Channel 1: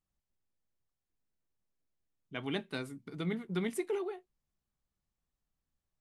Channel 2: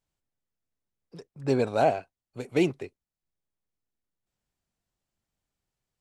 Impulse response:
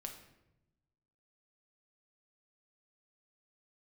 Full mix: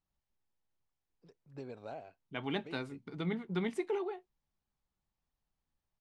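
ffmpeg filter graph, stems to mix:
-filter_complex "[0:a]equalizer=f=870:w=3.8:g=6,volume=-0.5dB,asplit=2[a][b];[1:a]acompressor=threshold=-25dB:ratio=6,adelay=100,volume=-16.5dB[c];[b]apad=whole_len=269188[d];[c][d]sidechaincompress=threshold=-42dB:ratio=8:attack=28:release=211[e];[a][e]amix=inputs=2:normalize=0,lowpass=5.5k"

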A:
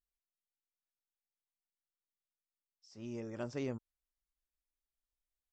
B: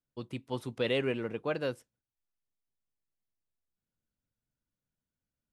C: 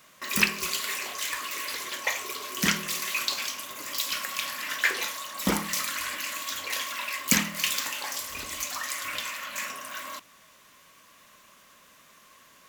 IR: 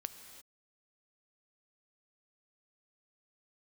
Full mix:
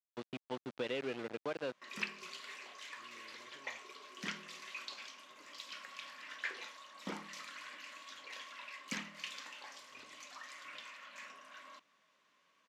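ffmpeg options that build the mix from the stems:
-filter_complex "[0:a]acompressor=threshold=-40dB:ratio=6,volume=-19.5dB[a];[1:a]acompressor=threshold=-39dB:ratio=2.5,aeval=exprs='val(0)*gte(abs(val(0)),0.00841)':c=same,volume=0.5dB[b];[2:a]adelay=1600,volume=-15.5dB[c];[a][b][c]amix=inputs=3:normalize=0,highpass=200,lowpass=4.5k"

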